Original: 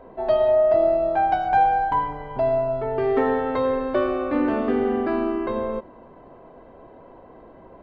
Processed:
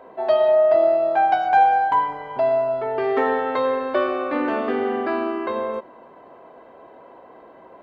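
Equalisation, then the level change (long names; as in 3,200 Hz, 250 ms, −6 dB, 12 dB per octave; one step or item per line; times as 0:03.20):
high-pass filter 660 Hz 6 dB per octave
+5.0 dB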